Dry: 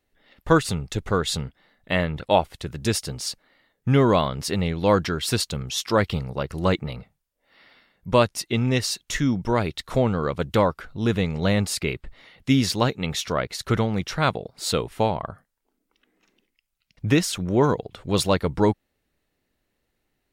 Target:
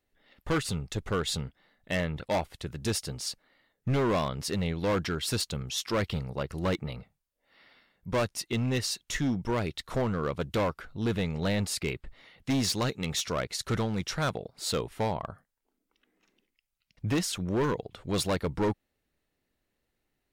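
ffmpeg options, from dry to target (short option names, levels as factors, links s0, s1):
-filter_complex "[0:a]asettb=1/sr,asplit=3[s0][s1][s2];[s0]atrim=end=12.504[s3];[s1]atrim=start=12.5:end=14.24,asetpts=PTS-STARTPTS,afade=t=in:d=0.004:c=qsin,afade=t=out:st=1.736:d=0.004:c=qsin,equalizer=f=7300:t=o:w=1.6:g=5[s4];[s2]atrim=start=14.236[s5];[s3][s4]acrossfade=d=0.004:c1=hsin:c2=qsin[s6];[s6][s5]acrossfade=d=0.004:c1=qsin:c2=hsin,volume=7.94,asoftclip=hard,volume=0.126,volume=0.562"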